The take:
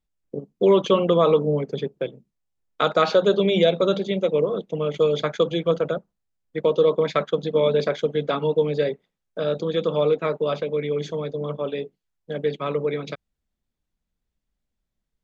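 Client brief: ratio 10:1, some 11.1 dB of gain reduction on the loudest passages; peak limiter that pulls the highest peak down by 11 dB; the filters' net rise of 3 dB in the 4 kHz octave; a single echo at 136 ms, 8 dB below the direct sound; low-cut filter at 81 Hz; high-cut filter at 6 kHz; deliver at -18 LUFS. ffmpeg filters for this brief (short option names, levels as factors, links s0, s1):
-af "highpass=81,lowpass=6000,equalizer=f=4000:t=o:g=4,acompressor=threshold=0.0631:ratio=10,alimiter=limit=0.0841:level=0:latency=1,aecho=1:1:136:0.398,volume=4.73"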